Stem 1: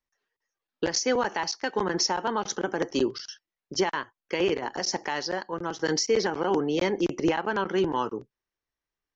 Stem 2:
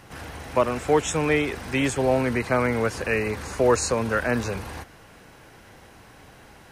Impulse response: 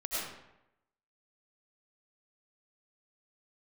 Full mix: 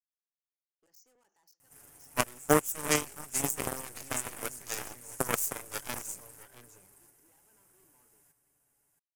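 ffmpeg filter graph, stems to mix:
-filter_complex "[0:a]asoftclip=type=tanh:threshold=-28.5dB,volume=-15dB,asplit=2[a][b];[b]volume=-21.5dB[c];[1:a]aecho=1:1:7:0.64,adelay=1600,volume=-2.5dB,asplit=2[d][e];[e]volume=-8dB[f];[c][f]amix=inputs=2:normalize=0,aecho=0:1:672:1[g];[a][d][g]amix=inputs=3:normalize=0,equalizer=f=5.9k:w=4.6:g=-6,aeval=exprs='0.376*(cos(1*acos(clip(val(0)/0.376,-1,1)))-cos(1*PI/2))+0.0299*(cos(2*acos(clip(val(0)/0.376,-1,1)))-cos(2*PI/2))+0.133*(cos(3*acos(clip(val(0)/0.376,-1,1)))-cos(3*PI/2))+0.0237*(cos(4*acos(clip(val(0)/0.376,-1,1)))-cos(4*PI/2))+0.0168*(cos(6*acos(clip(val(0)/0.376,-1,1)))-cos(6*PI/2))':c=same,aexciter=amount=13.7:drive=3.9:freq=6k"

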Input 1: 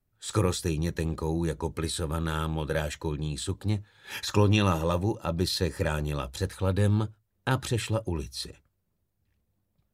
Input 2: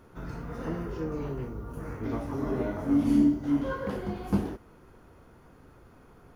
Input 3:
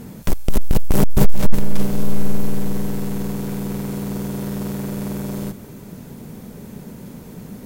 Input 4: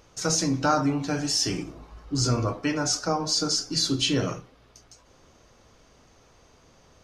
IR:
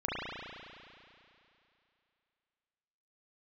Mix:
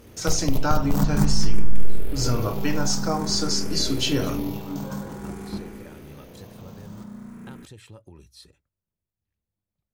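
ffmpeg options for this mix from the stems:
-filter_complex "[0:a]acompressor=threshold=-30dB:ratio=5,volume=-12dB[a];[1:a]adelay=1200,volume=-8.5dB[b];[2:a]aeval=exprs='val(0)*gte(abs(val(0)),0.00944)':c=same,tremolo=f=41:d=0.519,asplit=2[c][d];[d]afreqshift=0.51[e];[c][e]amix=inputs=2:normalize=1,volume=-3.5dB,asplit=2[f][g];[g]volume=-7dB[h];[3:a]volume=0dB,asplit=2[i][j];[j]apad=whole_len=337379[k];[f][k]sidechaingate=range=-33dB:threshold=-54dB:ratio=16:detection=peak[l];[4:a]atrim=start_sample=2205[m];[h][m]afir=irnorm=-1:irlink=0[n];[a][b][l][i][n]amix=inputs=5:normalize=0,acompressor=threshold=-15dB:ratio=2"

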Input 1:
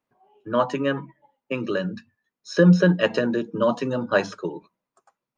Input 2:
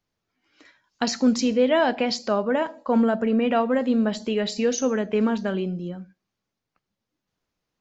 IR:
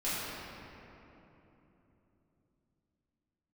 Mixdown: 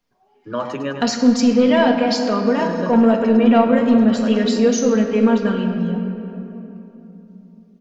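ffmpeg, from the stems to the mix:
-filter_complex "[0:a]acompressor=threshold=-18dB:ratio=6,volume=-1dB,asplit=2[a][b];[b]volume=-8dB[c];[1:a]aecho=1:1:4.3:0.74,acontrast=37,volume=-5.5dB,asplit=3[d][e][f];[e]volume=-10dB[g];[f]apad=whole_len=236992[h];[a][h]sidechaincompress=threshold=-30dB:ratio=8:attack=16:release=366[i];[2:a]atrim=start_sample=2205[j];[g][j]afir=irnorm=-1:irlink=0[k];[c]aecho=0:1:103|206|309|412|515|618|721|824:1|0.54|0.292|0.157|0.085|0.0459|0.0248|0.0134[l];[i][d][k][l]amix=inputs=4:normalize=0"

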